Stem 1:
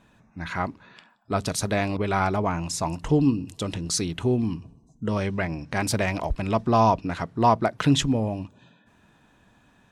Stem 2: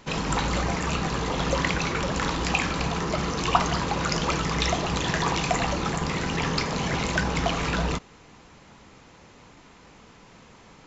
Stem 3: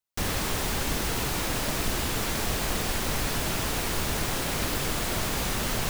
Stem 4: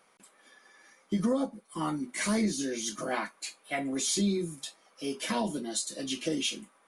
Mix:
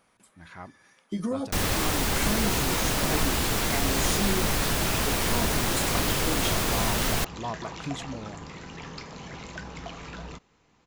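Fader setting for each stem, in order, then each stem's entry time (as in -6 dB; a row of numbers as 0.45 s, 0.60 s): -15.0 dB, -14.0 dB, +2.5 dB, -2.0 dB; 0.00 s, 2.40 s, 1.35 s, 0.00 s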